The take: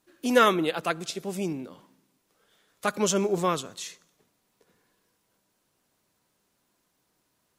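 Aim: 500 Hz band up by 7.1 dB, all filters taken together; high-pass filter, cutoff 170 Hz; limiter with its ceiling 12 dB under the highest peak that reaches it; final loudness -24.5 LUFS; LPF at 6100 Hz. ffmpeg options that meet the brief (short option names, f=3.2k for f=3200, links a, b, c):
-af "highpass=170,lowpass=6.1k,equalizer=f=500:t=o:g=8.5,volume=0.5dB,alimiter=limit=-12dB:level=0:latency=1"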